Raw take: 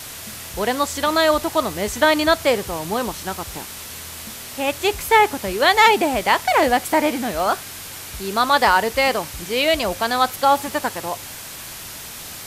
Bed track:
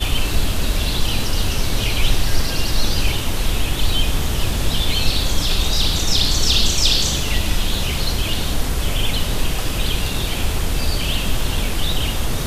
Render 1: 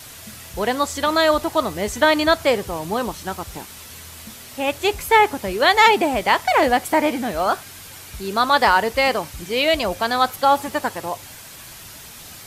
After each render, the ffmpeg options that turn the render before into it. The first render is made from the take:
-af "afftdn=nr=6:nf=-35"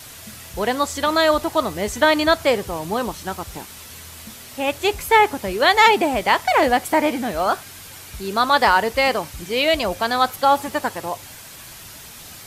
-af anull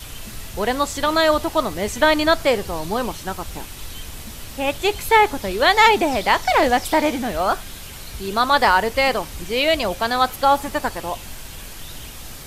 -filter_complex "[1:a]volume=0.126[s0];[0:a][s0]amix=inputs=2:normalize=0"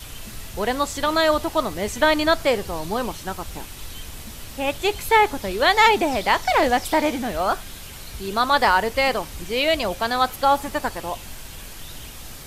-af "volume=0.794"

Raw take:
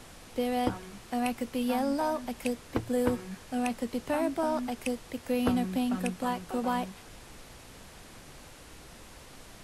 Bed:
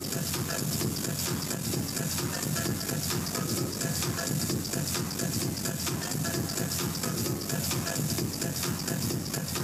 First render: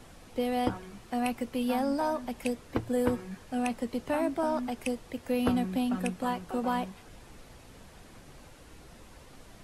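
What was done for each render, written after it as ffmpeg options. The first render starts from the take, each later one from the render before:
-af "afftdn=nr=6:nf=-51"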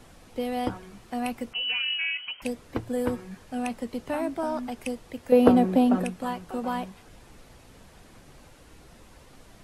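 -filter_complex "[0:a]asettb=1/sr,asplit=3[s0][s1][s2];[s0]atrim=end=1.534[s3];[s1]atrim=start=1.53:end=2.42,asetpts=PTS-STARTPTS,afade=t=in:d=0.004:c=qsin,afade=t=out:st=0.886:d=0.004:c=qsin,lowpass=f=2700:t=q:w=0.5098,lowpass=f=2700:t=q:w=0.6013,lowpass=f=2700:t=q:w=0.9,lowpass=f=2700:t=q:w=2.563,afreqshift=-3200[s4];[s2]atrim=start=2.416[s5];[s3][s4]acrossfade=d=0.004:c1=hsin:c2=qsin[s6];[s6][s5]acrossfade=d=0.004:c1=qsin:c2=hsin,asettb=1/sr,asplit=3[s7][s8][s9];[s7]atrim=end=5.324[s10];[s8]atrim=start=5.32:end=6.04,asetpts=PTS-STARTPTS,afade=t=in:d=0.004:c=qsin,afade=t=out:st=0.716:d=0.004:c=qsin,equalizer=f=480:t=o:w=2.4:g=14[s11];[s9]atrim=start=6.036[s12];[s10][s11]acrossfade=d=0.004:c1=hsin:c2=qsin[s13];[s13][s12]acrossfade=d=0.004:c1=qsin:c2=hsin"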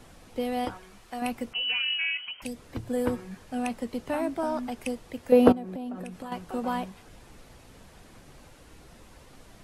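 -filter_complex "[0:a]asettb=1/sr,asplit=3[s0][s1][s2];[s0]atrim=end=0.654[s3];[s1]atrim=start=0.65:end=1.22,asetpts=PTS-STARTPTS,afade=t=in:d=0.004:c=qsin,afade=t=out:st=0.566:d=0.004:c=qsin,equalizer=f=170:t=o:w=2.7:g=-9.5[s4];[s2]atrim=start=1.216[s5];[s3][s4]acrossfade=d=0.004:c1=hsin:c2=qsin[s6];[s6][s5]acrossfade=d=0.004:c1=qsin:c2=hsin,asettb=1/sr,asplit=3[s7][s8][s9];[s7]atrim=end=2.264[s10];[s8]atrim=start=2.26:end=2.85,asetpts=PTS-STARTPTS,afade=t=in:d=0.004:c=qsin,afade=t=out:st=0.586:d=0.004:c=qsin,acrossover=split=220|3000[s11][s12][s13];[s12]acompressor=threshold=0.00891:ratio=2.5:attack=3.2:release=140:knee=2.83:detection=peak[s14];[s11][s14][s13]amix=inputs=3:normalize=0[s15];[s9]atrim=start=2.846[s16];[s10][s15]acrossfade=d=0.004:c1=hsin:c2=qsin[s17];[s17][s16]acrossfade=d=0.004:c1=qsin:c2=hsin,asettb=1/sr,asplit=3[s18][s19][s20];[s18]atrim=end=5.524[s21];[s19]atrim=start=5.52:end=6.32,asetpts=PTS-STARTPTS,afade=t=in:d=0.004:c=qsin,afade=t=out:st=0.796:d=0.004:c=qsin,acompressor=threshold=0.02:ratio=6:attack=3.2:release=140:knee=1:detection=peak[s22];[s20]atrim=start=6.316[s23];[s21][s22]acrossfade=d=0.004:c1=hsin:c2=qsin[s24];[s24][s23]acrossfade=d=0.004:c1=qsin:c2=hsin"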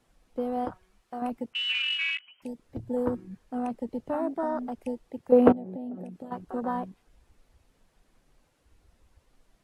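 -af "afwtdn=0.0224,lowshelf=f=75:g=-7.5"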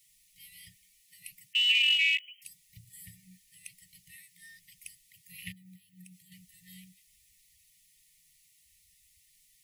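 -af "aemphasis=mode=production:type=riaa,afftfilt=real='re*(1-between(b*sr/4096,190,1800))':imag='im*(1-between(b*sr/4096,190,1800))':win_size=4096:overlap=0.75"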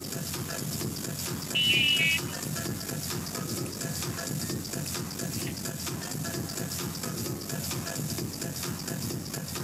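-filter_complex "[1:a]volume=0.708[s0];[0:a][s0]amix=inputs=2:normalize=0"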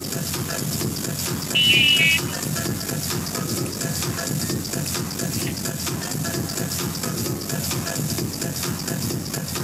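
-af "volume=2.51"

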